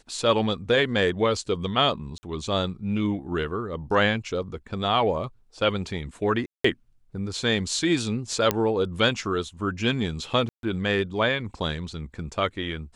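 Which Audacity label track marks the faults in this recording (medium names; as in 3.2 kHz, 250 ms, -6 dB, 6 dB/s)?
2.180000	2.230000	dropout 50 ms
6.460000	6.640000	dropout 184 ms
8.510000	8.510000	pop -6 dBFS
10.490000	10.630000	dropout 142 ms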